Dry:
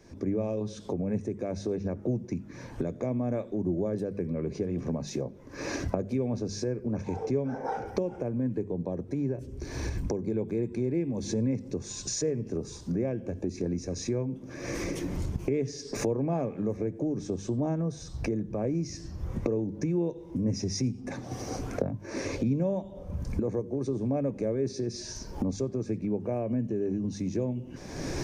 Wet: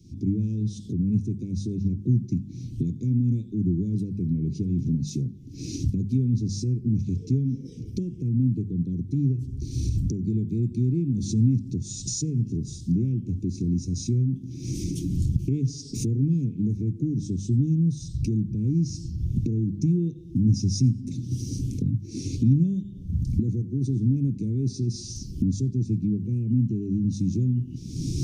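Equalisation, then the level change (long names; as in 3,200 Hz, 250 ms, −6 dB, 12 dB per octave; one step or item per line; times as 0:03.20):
dynamic equaliser 8,900 Hz, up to +5 dB, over −57 dBFS, Q 1.1
inverse Chebyshev band-stop filter 670–1,500 Hz, stop band 60 dB
parametric band 120 Hz +12 dB 1.8 octaves
0.0 dB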